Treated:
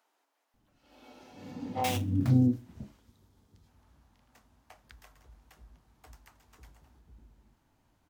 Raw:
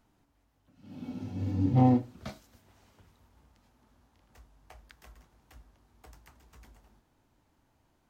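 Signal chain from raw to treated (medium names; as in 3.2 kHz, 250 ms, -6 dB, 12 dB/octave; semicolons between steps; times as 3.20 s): 1.84–2.30 s: sample-rate reducer 3.1 kHz, jitter 20%; 2.98–3.67 s: time-frequency box 520–3100 Hz -6 dB; bands offset in time highs, lows 540 ms, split 420 Hz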